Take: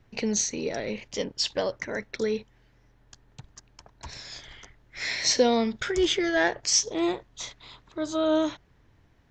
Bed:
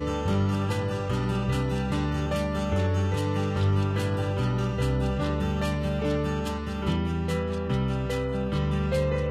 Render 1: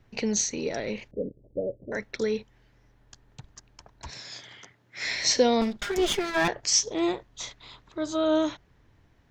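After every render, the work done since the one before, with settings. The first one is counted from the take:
0:01.11–0:01.92: Butterworth low-pass 580 Hz 48 dB per octave
0:04.10–0:05.06: high-pass filter 110 Hz 24 dB per octave
0:05.61–0:06.48: lower of the sound and its delayed copy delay 5 ms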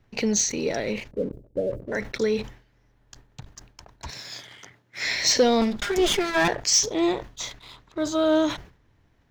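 leveller curve on the samples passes 1
level that may fall only so fast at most 130 dB per second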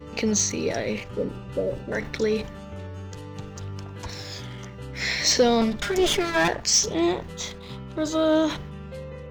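mix in bed −12 dB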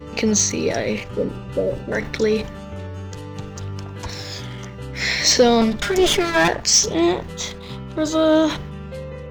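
level +5 dB

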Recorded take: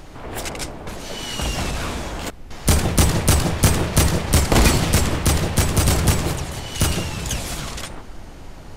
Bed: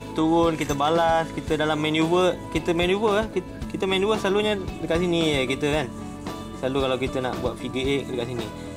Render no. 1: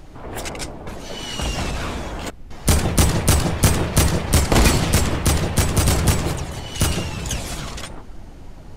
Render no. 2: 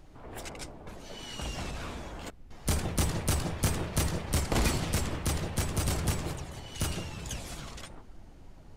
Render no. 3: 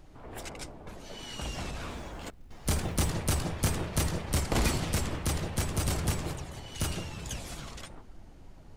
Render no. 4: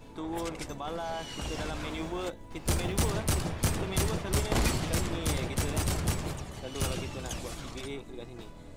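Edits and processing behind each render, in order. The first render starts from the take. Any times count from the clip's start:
broadband denoise 6 dB, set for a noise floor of −38 dBFS
level −12.5 dB
0:01.90–0:03.11: floating-point word with a short mantissa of 4 bits
mix in bed −16 dB

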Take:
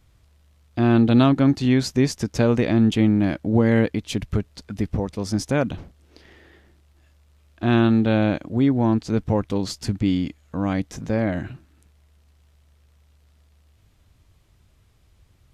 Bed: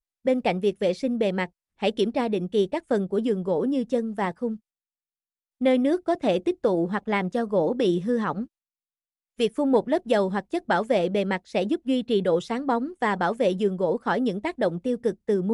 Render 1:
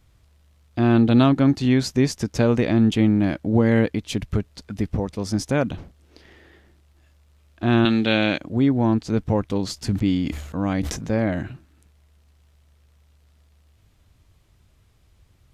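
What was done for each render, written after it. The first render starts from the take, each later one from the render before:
0:07.85–0:08.38: meter weighting curve D
0:09.75–0:11.43: level that may fall only so fast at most 58 dB per second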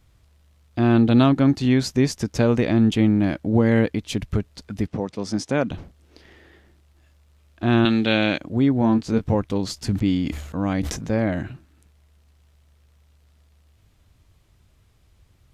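0:04.87–0:05.71: band-pass filter 150–7,700 Hz
0:08.79–0:09.35: double-tracking delay 22 ms −7 dB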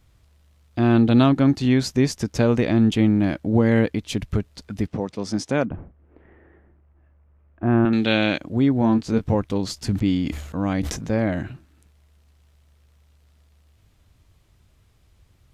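0:05.65–0:07.93: Bessel low-pass filter 1,300 Hz, order 6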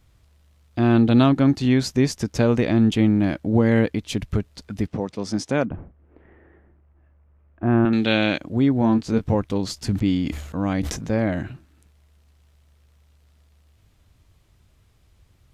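no processing that can be heard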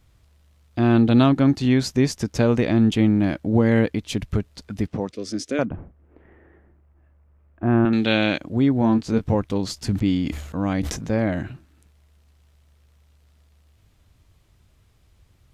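0:05.11–0:05.59: phaser with its sweep stopped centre 360 Hz, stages 4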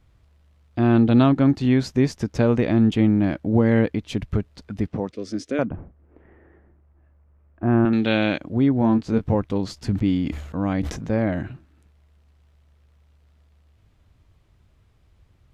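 high-shelf EQ 4,300 Hz −11 dB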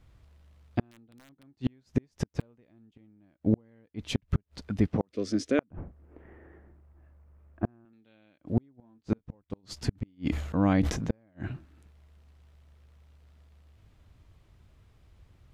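wrap-around overflow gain 6.5 dB
gate with flip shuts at −13 dBFS, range −41 dB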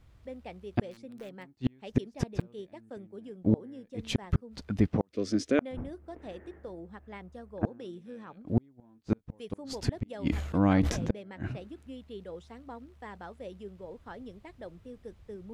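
mix in bed −20.5 dB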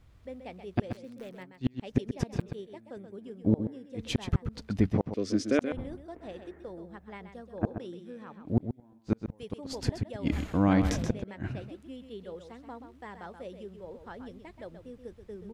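single-tap delay 129 ms −9 dB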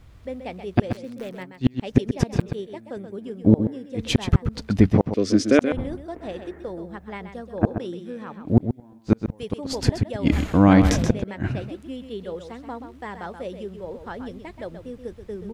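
level +9.5 dB

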